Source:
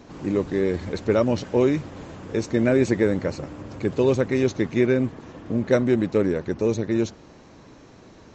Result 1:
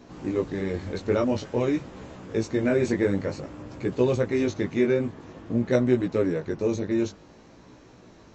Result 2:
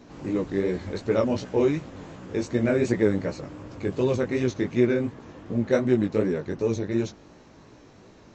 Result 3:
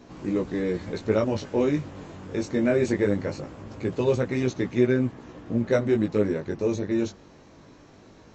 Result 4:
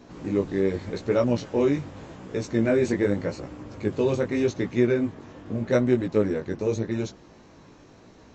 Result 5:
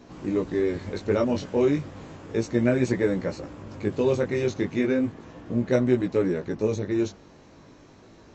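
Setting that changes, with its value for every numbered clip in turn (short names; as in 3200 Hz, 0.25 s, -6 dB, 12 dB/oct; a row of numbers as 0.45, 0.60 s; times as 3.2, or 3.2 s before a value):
chorus, rate: 0.51, 2.7, 0.21, 0.85, 0.34 Hz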